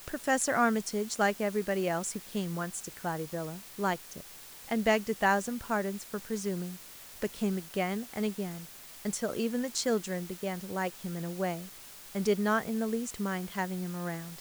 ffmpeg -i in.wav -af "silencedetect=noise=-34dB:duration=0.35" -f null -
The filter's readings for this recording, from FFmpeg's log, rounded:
silence_start: 4.20
silence_end: 4.69 | silence_duration: 0.49
silence_start: 6.74
silence_end: 7.22 | silence_duration: 0.49
silence_start: 8.59
silence_end: 9.05 | silence_duration: 0.46
silence_start: 11.64
silence_end: 12.15 | silence_duration: 0.51